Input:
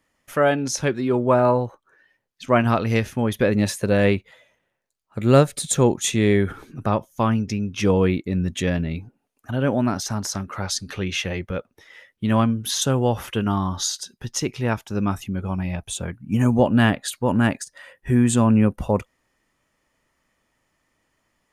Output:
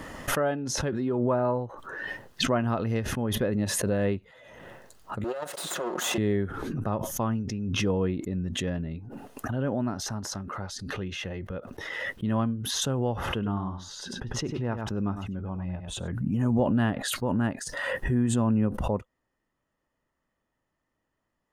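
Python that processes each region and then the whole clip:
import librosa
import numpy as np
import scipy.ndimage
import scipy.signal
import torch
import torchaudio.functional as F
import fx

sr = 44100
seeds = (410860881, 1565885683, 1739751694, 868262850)

y = fx.chain(x, sr, fx.lower_of_two(delay_ms=5.5),
    fx.highpass(hz=480.0, slope=12),
    fx.over_compress(threshold_db=-22.0, ratio=-0.5), at=(5.24, 6.18))
y = fx.chain(y, sr, fx.lowpass(hz=2800.0, slope=6),
    fx.echo_single(ms=99, db=-10.0), at=(13.16, 16.08))
y = fx.high_shelf(y, sr, hz=2400.0, db=-10.5)
y = fx.notch(y, sr, hz=2300.0, q=7.5)
y = fx.pre_swell(y, sr, db_per_s=26.0)
y = y * 10.0 ** (-8.0 / 20.0)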